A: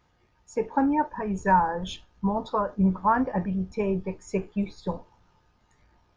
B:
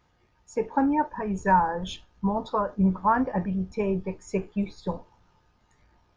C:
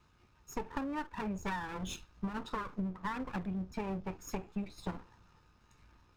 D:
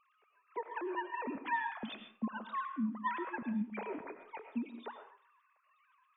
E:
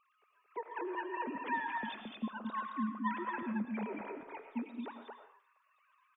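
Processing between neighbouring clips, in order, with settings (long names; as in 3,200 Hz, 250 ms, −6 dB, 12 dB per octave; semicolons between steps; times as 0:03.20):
no processing that can be heard
lower of the sound and its delayed copy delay 0.76 ms; downward compressor 12 to 1, threshold −34 dBFS, peak gain reduction 17 dB
three sine waves on the formant tracks; on a send at −7 dB: convolution reverb RT60 0.40 s, pre-delay 65 ms; on the sum: level −1 dB
single-tap delay 222 ms −3.5 dB; level −1.5 dB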